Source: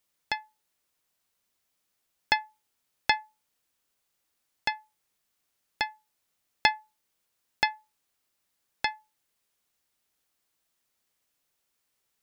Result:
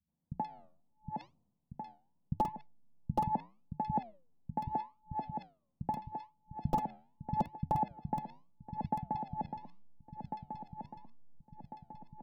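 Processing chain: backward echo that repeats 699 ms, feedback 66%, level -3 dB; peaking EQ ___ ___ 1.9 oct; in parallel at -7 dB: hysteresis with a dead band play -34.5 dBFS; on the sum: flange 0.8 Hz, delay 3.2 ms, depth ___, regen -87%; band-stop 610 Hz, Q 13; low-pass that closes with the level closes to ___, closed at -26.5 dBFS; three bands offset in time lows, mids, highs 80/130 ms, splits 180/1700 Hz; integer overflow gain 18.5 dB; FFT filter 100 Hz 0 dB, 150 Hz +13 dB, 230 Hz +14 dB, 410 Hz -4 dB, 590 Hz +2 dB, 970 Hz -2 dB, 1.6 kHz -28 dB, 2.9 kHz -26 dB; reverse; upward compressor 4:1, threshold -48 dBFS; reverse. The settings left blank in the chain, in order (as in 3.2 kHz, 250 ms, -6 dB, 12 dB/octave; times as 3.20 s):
83 Hz, +13 dB, 8.9 ms, 2.4 kHz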